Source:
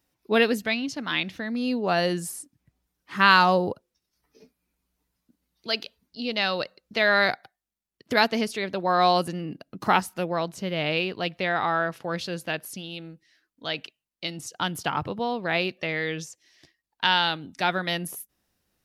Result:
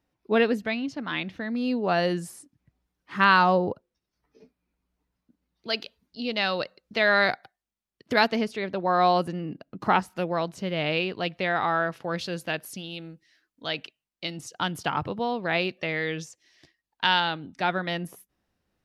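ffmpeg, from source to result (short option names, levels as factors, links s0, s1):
-af "asetnsamples=n=441:p=0,asendcmd='1.41 lowpass f 3300;3.24 lowpass f 2000;5.7 lowpass f 5100;8.36 lowpass f 2200;10.1 lowpass f 5100;12.19 lowpass f 10000;13.77 lowpass f 5600;17.2 lowpass f 2200',lowpass=f=1800:p=1"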